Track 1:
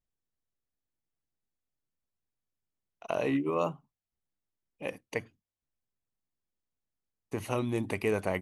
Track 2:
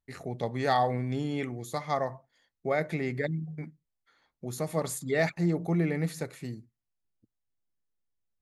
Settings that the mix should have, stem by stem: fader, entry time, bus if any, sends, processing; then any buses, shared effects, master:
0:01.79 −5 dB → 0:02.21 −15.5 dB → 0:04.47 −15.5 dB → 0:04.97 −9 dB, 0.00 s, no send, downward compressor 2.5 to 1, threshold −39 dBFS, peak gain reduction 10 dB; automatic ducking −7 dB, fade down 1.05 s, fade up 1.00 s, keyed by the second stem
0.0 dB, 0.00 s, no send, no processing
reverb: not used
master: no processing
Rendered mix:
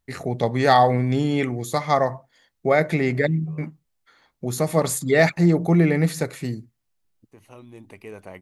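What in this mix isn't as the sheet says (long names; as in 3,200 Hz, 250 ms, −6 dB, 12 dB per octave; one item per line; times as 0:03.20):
stem 1: missing downward compressor 2.5 to 1, threshold −39 dBFS, peak gain reduction 10 dB
stem 2 0.0 dB → +10.0 dB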